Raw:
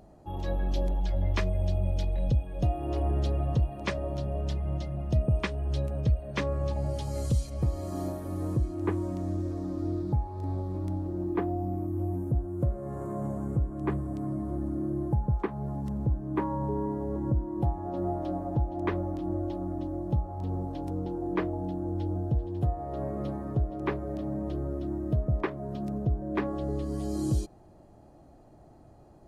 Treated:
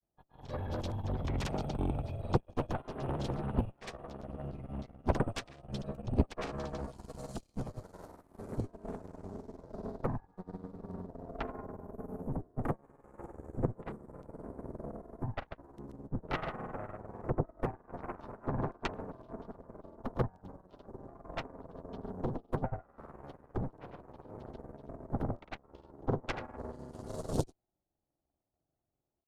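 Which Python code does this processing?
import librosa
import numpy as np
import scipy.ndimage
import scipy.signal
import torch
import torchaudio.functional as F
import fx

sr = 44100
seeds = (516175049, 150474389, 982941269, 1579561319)

y = fx.granulator(x, sr, seeds[0], grain_ms=100.0, per_s=20.0, spray_ms=100.0, spread_st=0)
y = fx.cheby_harmonics(y, sr, harmonics=(3, 6, 7, 8), levels_db=(-7, -8, -45, -31), full_scale_db=-17.0)
y = fx.upward_expand(y, sr, threshold_db=-40.0, expansion=2.5)
y = y * librosa.db_to_amplitude(1.5)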